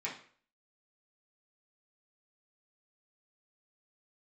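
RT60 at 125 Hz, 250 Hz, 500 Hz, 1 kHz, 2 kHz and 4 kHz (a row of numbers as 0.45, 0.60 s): 0.45, 0.45, 0.50, 0.45, 0.45, 0.40 s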